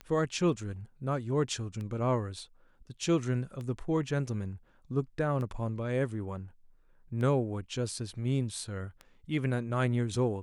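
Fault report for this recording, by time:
tick 33 1/3 rpm -28 dBFS

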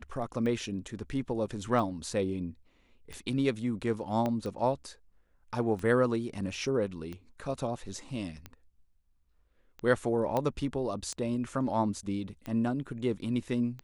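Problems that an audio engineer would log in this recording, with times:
tick 45 rpm -26 dBFS
4.26 pop -19 dBFS
10.37 pop -17 dBFS

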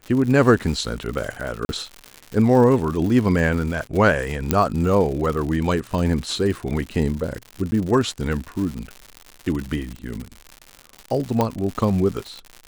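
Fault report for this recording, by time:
crackle 150/s -27 dBFS
1.65–1.69 gap 41 ms
4.51 pop -3 dBFS
7.71–7.72 gap 10 ms
11.41 pop -7 dBFS

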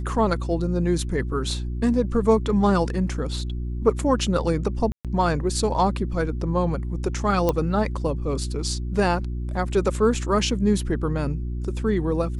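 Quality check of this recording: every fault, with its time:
hum 60 Hz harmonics 6 -28 dBFS
4.92–5.05 gap 0.127 s
7.49 pop -9 dBFS

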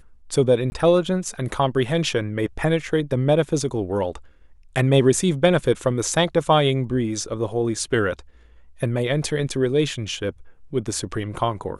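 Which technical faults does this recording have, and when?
0.7–0.72 gap 20 ms

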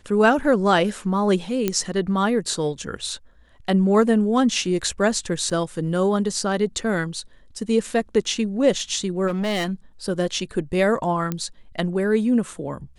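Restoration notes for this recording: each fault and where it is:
1.68 pop -7 dBFS
5.5–5.51 gap 6.2 ms
9.27–9.72 clipped -20.5 dBFS
11.32 pop -12 dBFS

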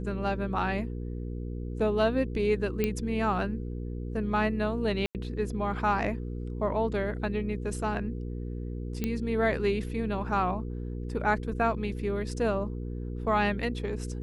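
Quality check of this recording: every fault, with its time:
hum 60 Hz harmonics 8 -35 dBFS
2.84 pop -14 dBFS
5.06–5.15 gap 88 ms
9.04 pop -16 dBFS

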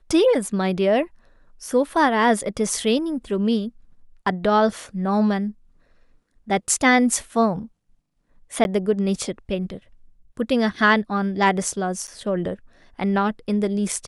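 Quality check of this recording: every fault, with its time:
8.64–8.65 gap 11 ms
12.07–12.08 gap 8.5 ms

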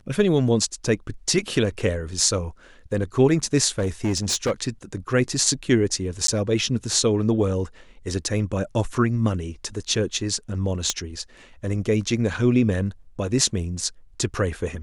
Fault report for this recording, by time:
3.78–4.52 clipped -18 dBFS
6.27–6.28 gap 13 ms
10.9 pop -7 dBFS

